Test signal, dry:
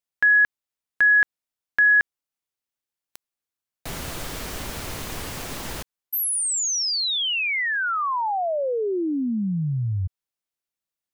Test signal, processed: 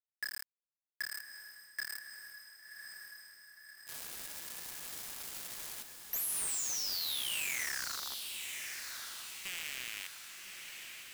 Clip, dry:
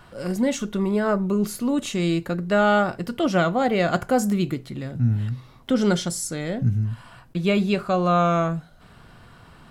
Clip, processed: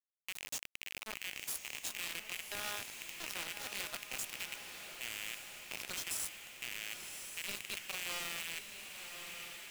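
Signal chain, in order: rattling part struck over -27 dBFS, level -15 dBFS; differentiator; compressor 8:1, threshold -35 dBFS; low-pass opened by the level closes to 600 Hz, open at -37 dBFS; resonator 66 Hz, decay 0.73 s, harmonics all, mix 70%; bit-crush 7-bit; diffused feedback echo 1.095 s, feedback 58%, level -14 dB; wavefolder -39 dBFS; gain +13 dB

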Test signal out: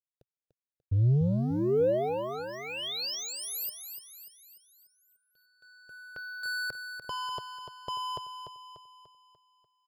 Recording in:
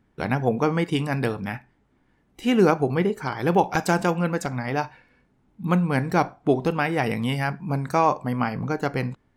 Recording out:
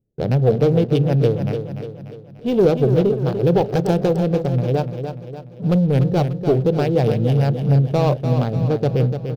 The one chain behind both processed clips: Wiener smoothing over 41 samples; bell 76 Hz -4.5 dB 0.99 oct; sample leveller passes 3; graphic EQ 125/250/500/1000/2000/4000/8000 Hz +8/-7/+9/-9/-10/+3/-9 dB; on a send: feedback echo 0.294 s, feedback 49%, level -8 dB; on the sum: gain -4.5 dB

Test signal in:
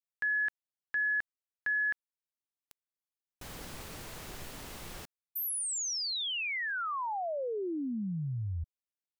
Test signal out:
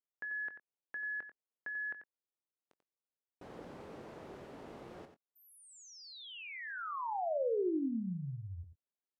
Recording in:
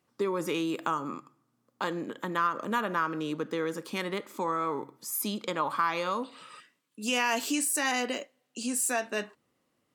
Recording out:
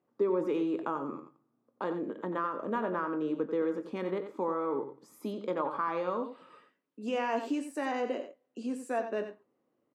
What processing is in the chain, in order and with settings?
band-pass 420 Hz, Q 0.91; doubler 22 ms -12.5 dB; echo 90 ms -9.5 dB; gain +1.5 dB

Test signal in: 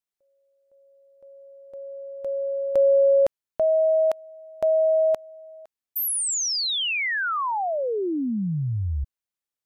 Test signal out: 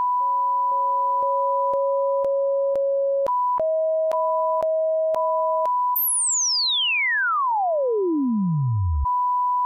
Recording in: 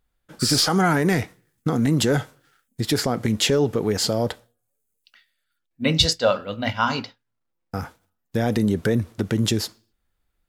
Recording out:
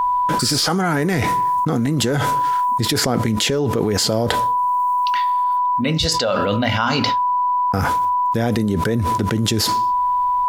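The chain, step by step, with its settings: whine 990 Hz -41 dBFS; fast leveller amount 100%; gain -4.5 dB

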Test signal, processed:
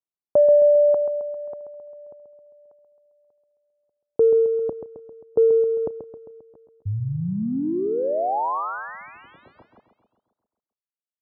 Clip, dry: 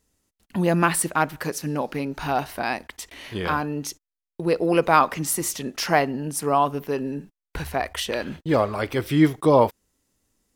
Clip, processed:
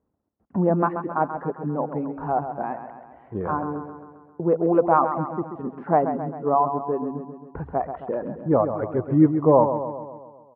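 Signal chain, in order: switching dead time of 0.063 ms; LPF 1100 Hz 24 dB/oct; reverb removal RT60 1.8 s; HPF 82 Hz; on a send: feedback echo 0.133 s, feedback 57%, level -9 dB; on the sum: gain +1.5 dB

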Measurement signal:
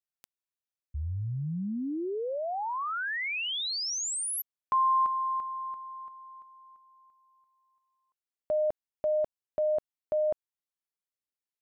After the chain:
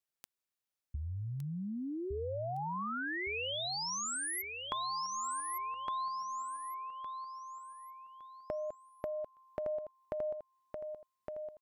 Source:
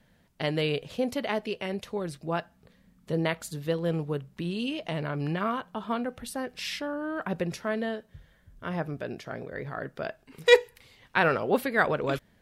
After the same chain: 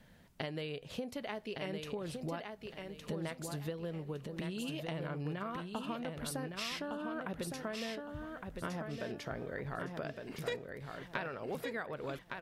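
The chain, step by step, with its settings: compressor 12:1, threshold -39 dBFS; on a send: feedback echo 1.162 s, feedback 29%, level -5 dB; on the sum: gain +2 dB

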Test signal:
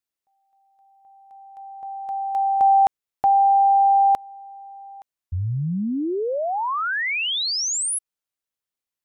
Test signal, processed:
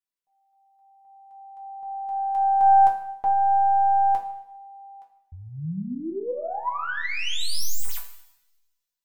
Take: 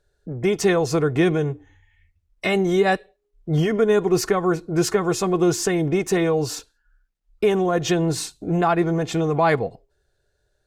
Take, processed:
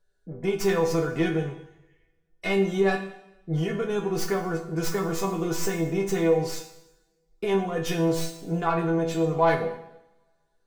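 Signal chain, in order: tracing distortion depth 0.063 ms; resonator bank E3 minor, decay 0.23 s; two-slope reverb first 0.85 s, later 2.2 s, from -27 dB, DRR 6 dB; gain +7.5 dB

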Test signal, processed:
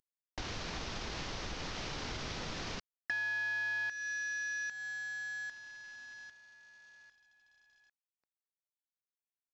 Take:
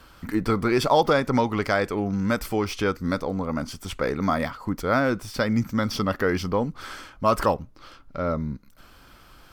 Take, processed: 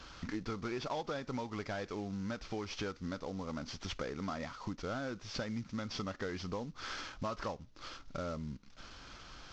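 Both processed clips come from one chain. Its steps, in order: CVSD 32 kbps; compressor 4:1, threshold -37 dBFS; high shelf 4500 Hz +7.5 dB; gain -2 dB

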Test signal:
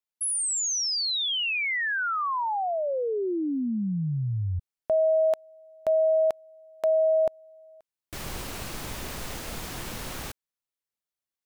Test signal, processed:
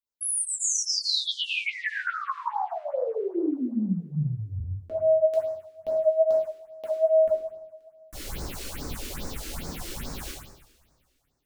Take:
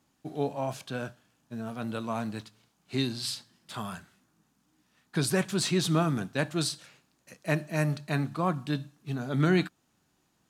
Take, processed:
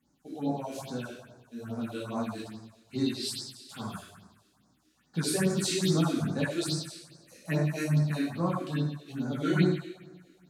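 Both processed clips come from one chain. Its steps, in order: two-slope reverb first 0.89 s, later 2.9 s, from -22 dB, DRR -6 dB; phaser stages 4, 2.4 Hz, lowest notch 130–3000 Hz; gain -6 dB

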